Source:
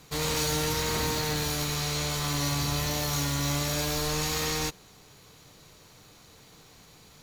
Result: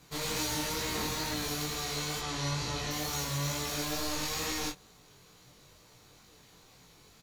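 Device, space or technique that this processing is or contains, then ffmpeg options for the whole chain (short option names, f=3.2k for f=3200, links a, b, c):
double-tracked vocal: -filter_complex "[0:a]asettb=1/sr,asplit=3[a][b][c];[a]atrim=end=2.194[d];[b]atrim=start=2.19:end=2.91,asetpts=PTS-STARTPTS,afade=t=in:d=0.004:c=qsin,afade=t=out:st=0.716:d=0.004:c=qsin,lowpass=7k[e];[c]atrim=start=2.906[f];[d][e]acrossfade=d=0.004:c1=hsin:c2=qsin[g];[g][f]acrossfade=d=0.004:c1=qsin:c2=hsin,asplit=2[h][i];[i]adelay=23,volume=-5dB[j];[h][j]amix=inputs=2:normalize=0,flanger=delay=16:depth=5.2:speed=2.2,volume=-2.5dB"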